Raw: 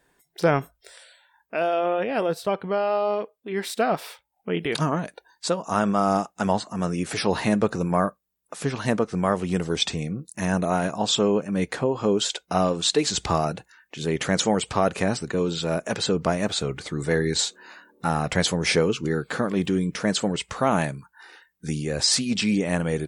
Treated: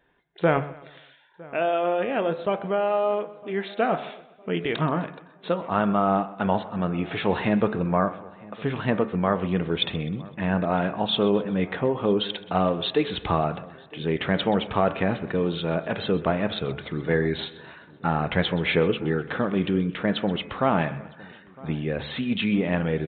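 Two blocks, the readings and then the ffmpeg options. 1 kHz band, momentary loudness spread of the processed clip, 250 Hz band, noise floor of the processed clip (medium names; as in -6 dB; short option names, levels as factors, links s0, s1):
-0.5 dB, 8 LU, 0.0 dB, -51 dBFS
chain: -filter_complex "[0:a]asplit=2[s0][s1];[s1]aecho=0:1:128|256|384|512:0.119|0.0559|0.0263|0.0123[s2];[s0][s2]amix=inputs=2:normalize=0,aresample=8000,aresample=44100,bandreject=f=72.17:t=h:w=4,bandreject=f=144.34:t=h:w=4,bandreject=f=216.51:t=h:w=4,bandreject=f=288.68:t=h:w=4,bandreject=f=360.85:t=h:w=4,bandreject=f=433.02:t=h:w=4,bandreject=f=505.19:t=h:w=4,bandreject=f=577.36:t=h:w=4,bandreject=f=649.53:t=h:w=4,bandreject=f=721.7:t=h:w=4,bandreject=f=793.87:t=h:w=4,bandreject=f=866.04:t=h:w=4,bandreject=f=938.21:t=h:w=4,bandreject=f=1010.38:t=h:w=4,bandreject=f=1082.55:t=h:w=4,bandreject=f=1154.72:t=h:w=4,bandreject=f=1226.89:t=h:w=4,bandreject=f=1299.06:t=h:w=4,bandreject=f=1371.23:t=h:w=4,bandreject=f=1443.4:t=h:w=4,bandreject=f=1515.57:t=h:w=4,bandreject=f=1587.74:t=h:w=4,bandreject=f=1659.91:t=h:w=4,bandreject=f=1732.08:t=h:w=4,bandreject=f=1804.25:t=h:w=4,bandreject=f=1876.42:t=h:w=4,bandreject=f=1948.59:t=h:w=4,bandreject=f=2020.76:t=h:w=4,bandreject=f=2092.93:t=h:w=4,bandreject=f=2165.1:t=h:w=4,bandreject=f=2237.27:t=h:w=4,bandreject=f=2309.44:t=h:w=4,bandreject=f=2381.61:t=h:w=4,bandreject=f=2453.78:t=h:w=4,bandreject=f=2525.95:t=h:w=4,bandreject=f=2598.12:t=h:w=4,asplit=2[s3][s4];[s4]adelay=958,lowpass=f=2000:p=1,volume=0.0794,asplit=2[s5][s6];[s6]adelay=958,lowpass=f=2000:p=1,volume=0.46,asplit=2[s7][s8];[s8]adelay=958,lowpass=f=2000:p=1,volume=0.46[s9];[s5][s7][s9]amix=inputs=3:normalize=0[s10];[s3][s10]amix=inputs=2:normalize=0"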